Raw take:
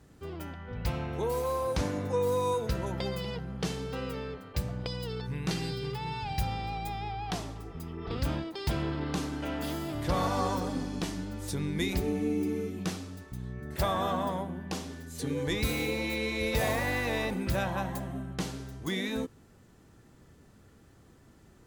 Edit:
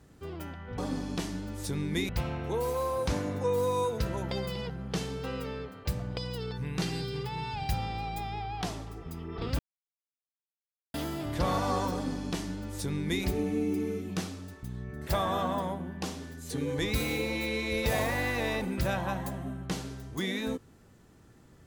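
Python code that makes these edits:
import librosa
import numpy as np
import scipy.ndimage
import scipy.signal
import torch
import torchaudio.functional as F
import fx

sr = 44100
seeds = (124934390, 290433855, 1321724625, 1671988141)

y = fx.edit(x, sr, fx.silence(start_s=8.28, length_s=1.35),
    fx.duplicate(start_s=10.62, length_s=1.31, to_s=0.78), tone=tone)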